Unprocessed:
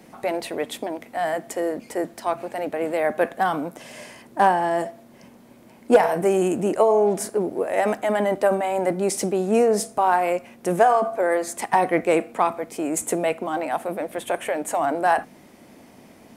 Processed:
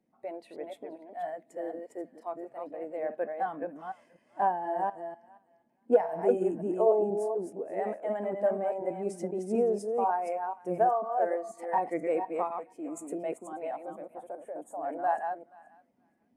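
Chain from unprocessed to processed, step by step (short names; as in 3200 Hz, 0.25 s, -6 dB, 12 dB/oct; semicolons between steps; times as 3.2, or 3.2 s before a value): reverse delay 0.245 s, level -3 dB; 14.1–14.83 bell 2600 Hz -12 dB 1.4 oct; thinning echo 0.478 s, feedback 32%, high-pass 1100 Hz, level -13 dB; spectral expander 1.5:1; gain -7.5 dB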